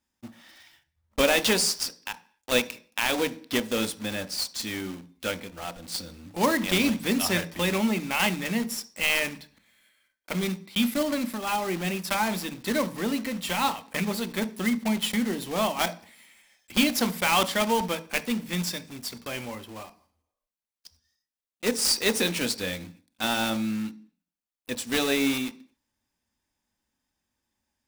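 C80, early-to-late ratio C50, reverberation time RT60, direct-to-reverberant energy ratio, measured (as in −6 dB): 23.0 dB, 18.5 dB, 0.45 s, 11.0 dB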